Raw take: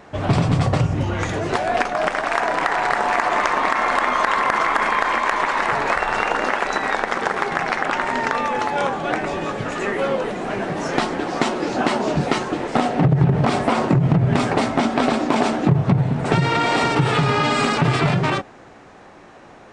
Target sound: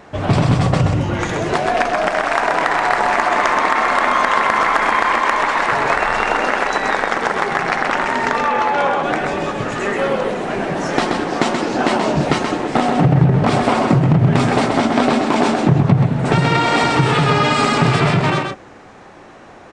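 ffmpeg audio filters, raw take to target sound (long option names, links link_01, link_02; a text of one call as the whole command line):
ffmpeg -i in.wav -filter_complex "[0:a]aecho=1:1:129:0.562,asettb=1/sr,asplit=3[link_01][link_02][link_03];[link_01]atrim=end=8.454[link_04];[link_02]atrim=start=8.45:end=9.03,asetpts=PTS-STARTPTS,afade=type=in:duration=0.004:curve=qsin,afade=type=out:start_time=0.576:duration=0.004:curve=qsin,asplit=2[link_05][link_06];[link_06]highpass=frequency=720:poles=1,volume=10dB,asoftclip=type=tanh:threshold=-7dB[link_07];[link_05][link_07]amix=inputs=2:normalize=0,lowpass=frequency=1900:poles=1,volume=-6dB[link_08];[link_03]atrim=start=9.026[link_09];[link_04][link_08]acrossfade=duration=0.004:curve1=hsin:curve2=qsin[link_10];[link_10][link_09]acrossfade=duration=0.004:curve1=qsin:curve2=hsin,volume=2.5dB" out.wav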